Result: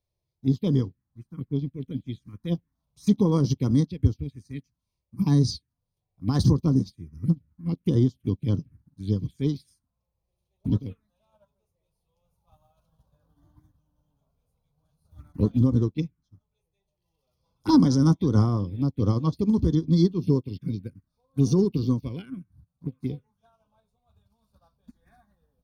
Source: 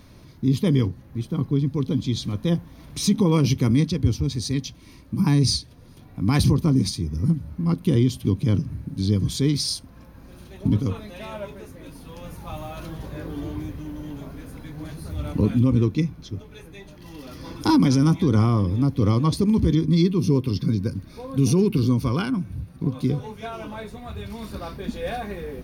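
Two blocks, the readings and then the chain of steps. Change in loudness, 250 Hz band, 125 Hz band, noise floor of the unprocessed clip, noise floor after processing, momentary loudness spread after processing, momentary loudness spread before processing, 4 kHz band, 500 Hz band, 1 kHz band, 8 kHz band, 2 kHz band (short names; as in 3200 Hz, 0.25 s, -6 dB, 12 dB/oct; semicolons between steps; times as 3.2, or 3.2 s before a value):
-2.5 dB, -3.0 dB, -3.5 dB, -47 dBFS, -82 dBFS, 16 LU, 18 LU, -10.5 dB, -4.0 dB, -6.5 dB, -11.0 dB, under -10 dB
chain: envelope phaser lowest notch 230 Hz, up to 2500 Hz, full sweep at -15 dBFS; upward expander 2.5:1, over -38 dBFS; gain +2 dB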